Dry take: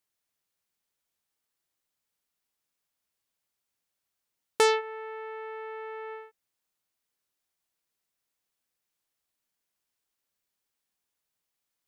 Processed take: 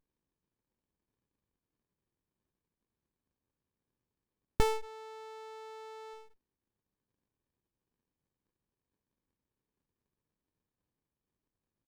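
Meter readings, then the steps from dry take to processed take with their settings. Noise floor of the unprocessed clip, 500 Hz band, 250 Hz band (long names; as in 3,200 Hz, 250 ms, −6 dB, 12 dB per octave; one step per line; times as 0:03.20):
−85 dBFS, −8.5 dB, +4.5 dB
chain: double-tracking delay 26 ms −4.5 dB
windowed peak hold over 65 samples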